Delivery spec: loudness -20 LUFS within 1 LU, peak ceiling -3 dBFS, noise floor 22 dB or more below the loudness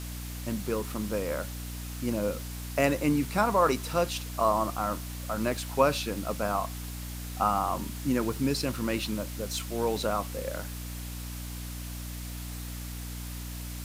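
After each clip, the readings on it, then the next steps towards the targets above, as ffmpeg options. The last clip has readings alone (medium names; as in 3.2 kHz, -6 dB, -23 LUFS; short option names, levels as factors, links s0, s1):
hum 60 Hz; highest harmonic 300 Hz; hum level -36 dBFS; noise floor -38 dBFS; noise floor target -53 dBFS; loudness -30.5 LUFS; peak level -10.0 dBFS; loudness target -20.0 LUFS
-> -af "bandreject=f=60:t=h:w=6,bandreject=f=120:t=h:w=6,bandreject=f=180:t=h:w=6,bandreject=f=240:t=h:w=6,bandreject=f=300:t=h:w=6"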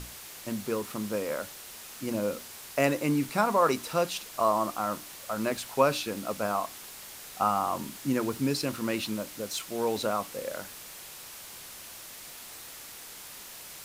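hum not found; noise floor -45 dBFS; noise floor target -52 dBFS
-> -af "afftdn=nr=7:nf=-45"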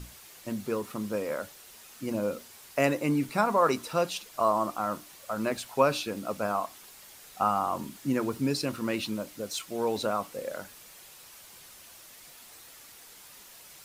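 noise floor -51 dBFS; noise floor target -52 dBFS
-> -af "afftdn=nr=6:nf=-51"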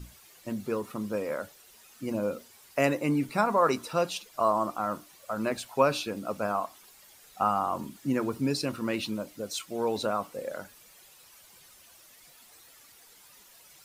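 noise floor -56 dBFS; loudness -30.0 LUFS; peak level -10.0 dBFS; loudness target -20.0 LUFS
-> -af "volume=3.16,alimiter=limit=0.708:level=0:latency=1"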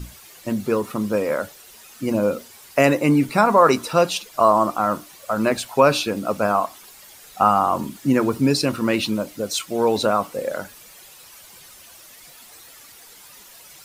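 loudness -20.5 LUFS; peak level -3.0 dBFS; noise floor -46 dBFS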